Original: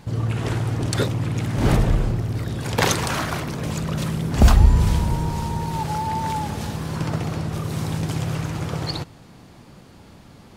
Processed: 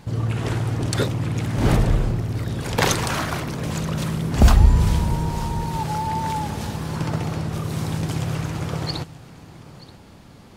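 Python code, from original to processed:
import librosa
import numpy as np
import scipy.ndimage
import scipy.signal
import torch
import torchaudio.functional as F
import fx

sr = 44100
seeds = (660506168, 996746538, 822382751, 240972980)

y = x + 10.0 ** (-19.0 / 20.0) * np.pad(x, (int(930 * sr / 1000.0), 0))[:len(x)]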